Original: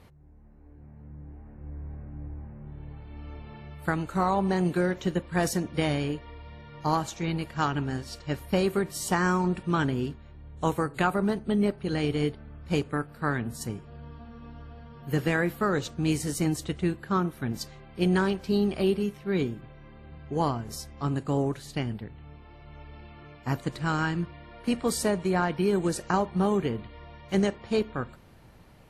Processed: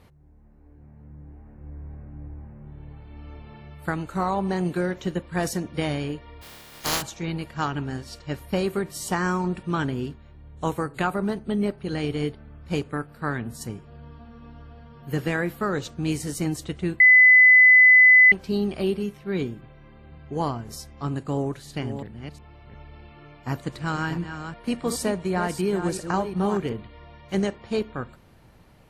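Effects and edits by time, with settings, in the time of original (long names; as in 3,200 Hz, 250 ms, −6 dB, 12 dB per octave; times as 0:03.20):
0:06.41–0:07.01: compressing power law on the bin magnitudes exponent 0.22
0:17.00–0:18.32: beep over 2,010 Hz −9.5 dBFS
0:21.31–0:26.73: delay that plays each chunk backwards 359 ms, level −8.5 dB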